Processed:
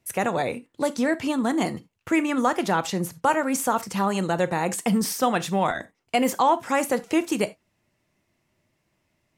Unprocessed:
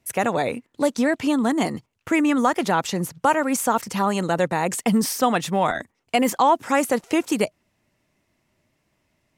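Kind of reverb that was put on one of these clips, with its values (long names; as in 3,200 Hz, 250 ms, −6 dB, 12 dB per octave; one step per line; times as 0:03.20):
reverb whose tail is shaped and stops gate 110 ms falling, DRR 12 dB
level −2.5 dB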